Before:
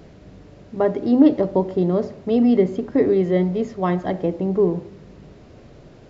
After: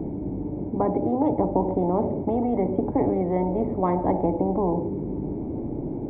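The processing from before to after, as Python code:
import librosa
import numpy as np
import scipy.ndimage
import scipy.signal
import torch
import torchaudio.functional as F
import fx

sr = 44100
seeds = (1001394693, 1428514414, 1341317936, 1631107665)

p1 = fx.high_shelf(x, sr, hz=2500.0, db=9.5)
p2 = fx.rider(p1, sr, range_db=10, speed_s=0.5)
p3 = p1 + F.gain(torch.from_numpy(p2), -2.0).numpy()
p4 = fx.formant_cascade(p3, sr, vowel='u')
p5 = fx.spectral_comp(p4, sr, ratio=4.0)
y = F.gain(torch.from_numpy(p5), -7.0).numpy()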